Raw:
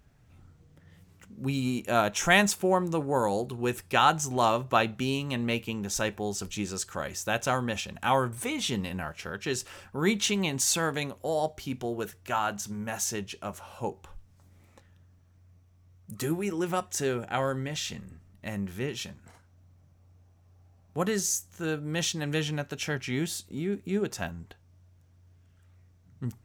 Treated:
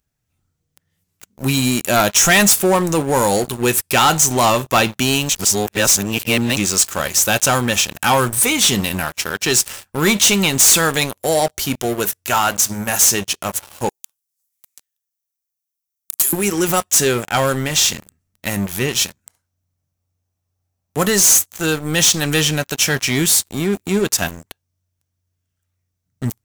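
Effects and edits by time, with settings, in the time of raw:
0:05.29–0:06.57: reverse
0:13.89–0:16.33: first difference
whole clip: first-order pre-emphasis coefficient 0.8; leveller curve on the samples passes 5; level +7.5 dB

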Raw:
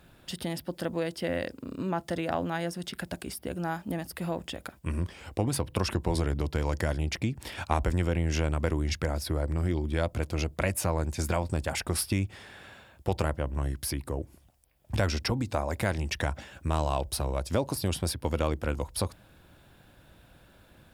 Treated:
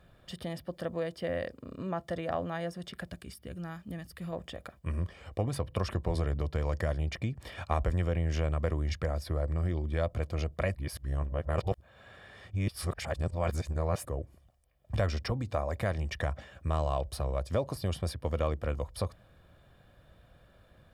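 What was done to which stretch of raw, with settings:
0:03.10–0:04.33: parametric band 690 Hz −11 dB 1.7 octaves
0:10.75–0:14.05: reverse
whole clip: high-shelf EQ 4,500 Hz −10.5 dB; notch filter 2,600 Hz, Q 16; comb filter 1.7 ms, depth 41%; level −3.5 dB

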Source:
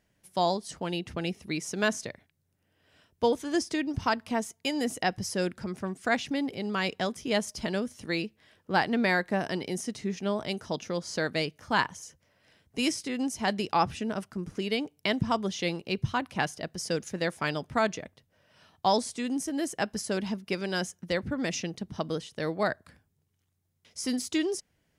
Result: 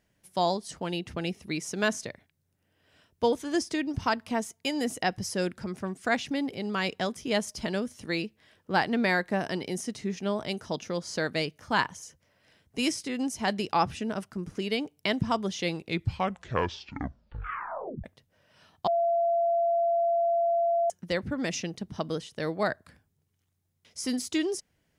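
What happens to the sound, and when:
0:15.67: tape stop 2.37 s
0:18.87–0:20.90: beep over 681 Hz −22 dBFS

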